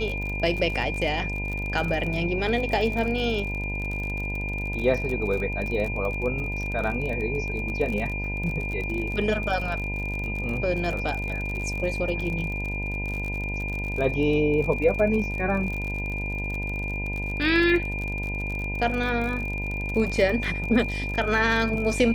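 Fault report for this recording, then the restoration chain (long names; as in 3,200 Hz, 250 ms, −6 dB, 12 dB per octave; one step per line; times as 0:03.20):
mains buzz 50 Hz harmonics 20 −31 dBFS
surface crackle 43 per second −30 dBFS
whistle 2,400 Hz −31 dBFS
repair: click removal
hum removal 50 Hz, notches 20
notch filter 2,400 Hz, Q 30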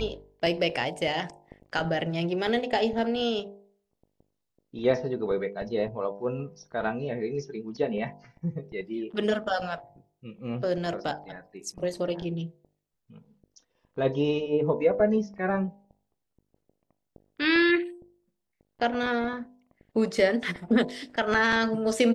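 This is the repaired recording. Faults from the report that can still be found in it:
none of them is left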